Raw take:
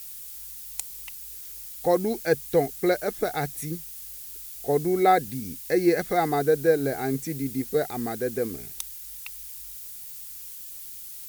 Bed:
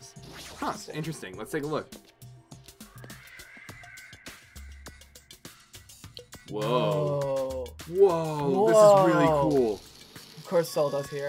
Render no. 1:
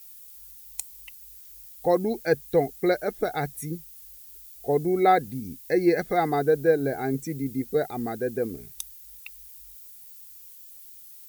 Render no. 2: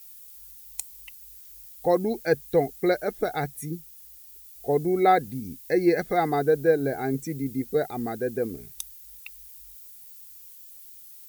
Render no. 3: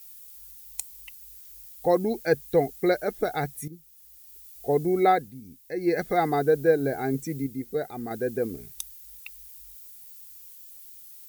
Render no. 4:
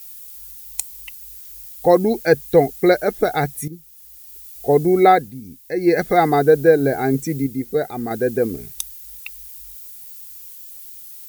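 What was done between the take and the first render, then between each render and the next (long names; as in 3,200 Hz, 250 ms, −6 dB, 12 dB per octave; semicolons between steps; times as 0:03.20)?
broadband denoise 10 dB, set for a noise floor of −40 dBFS
0:03.44–0:04.55: notch comb filter 530 Hz
0:03.68–0:04.43: fade in, from −13.5 dB; 0:05.04–0:06.03: duck −9.5 dB, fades 0.28 s; 0:07.46–0:08.11: tuned comb filter 72 Hz, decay 1.7 s, harmonics odd, mix 40%
level +8.5 dB; brickwall limiter −2 dBFS, peak gain reduction 1.5 dB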